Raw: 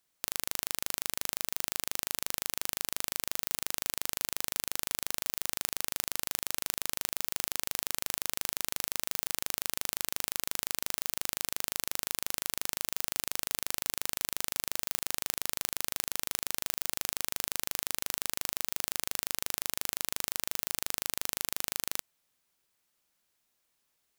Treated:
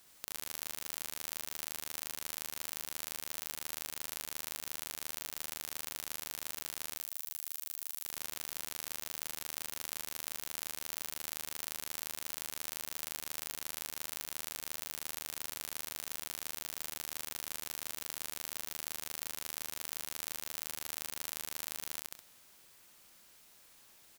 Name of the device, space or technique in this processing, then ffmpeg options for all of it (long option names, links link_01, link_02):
de-esser from a sidechain: -filter_complex "[0:a]asettb=1/sr,asplit=3[link_01][link_02][link_03];[link_01]atrim=end=6.974[link_04];[link_02]atrim=start=6.97:end=8.04,asetpts=PTS-STARTPTS,afade=type=in:duration=0.004:curve=qsin,afade=type=out:start_time=1.066:duration=0.004:curve=qsin,aderivative[link_05];[link_03]atrim=start=8.036[link_06];[link_04][link_05]acrossfade=duration=0.004:curve1=hsin:curve2=qsin[link_07];[link_07][link_06]acrossfade=duration=0.004:curve1=qsin:curve2=hsin,aecho=1:1:66|132|198:0.708|0.113|0.0181,asplit=2[link_08][link_09];[link_09]highpass=5800,apad=whole_len=1075361[link_10];[link_08][link_10]sidechaincompress=threshold=-44dB:ratio=12:attack=1.1:release=54,volume=14.5dB"